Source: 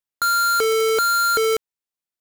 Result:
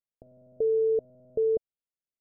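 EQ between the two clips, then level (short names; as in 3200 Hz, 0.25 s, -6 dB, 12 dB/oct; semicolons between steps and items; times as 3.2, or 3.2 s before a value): steep low-pass 660 Hz 72 dB/oct; bell 330 Hz -4.5 dB 0.77 oct; -2.5 dB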